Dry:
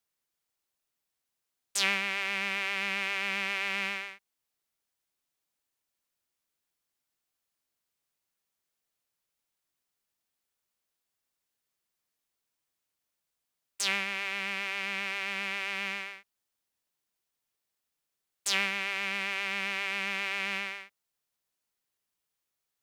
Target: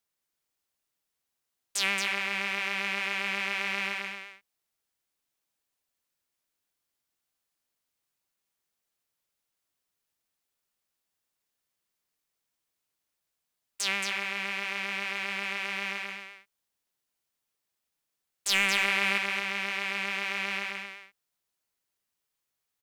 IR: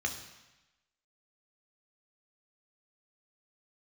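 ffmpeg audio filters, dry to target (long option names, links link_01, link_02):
-filter_complex "[0:a]asettb=1/sr,asplit=3[link_01][link_02][link_03];[link_01]atrim=end=18.494[link_04];[link_02]atrim=start=18.49:end=19.18,asetpts=PTS-STARTPTS,afade=type=in:duration=0.004:curve=qsin,afade=type=out:start_time=0.686:duration=0.004:curve=qsin,acontrast=42[link_05];[link_03]atrim=start=19.176[link_06];[link_04][link_05]acrossfade=duration=0.004:curve1=hsin:curve2=qsin[link_07];[link_07][link_06]acrossfade=duration=0.004:curve1=qsin:curve2=hsin,volume=14.5dB,asoftclip=hard,volume=-14.5dB,aecho=1:1:225:0.501"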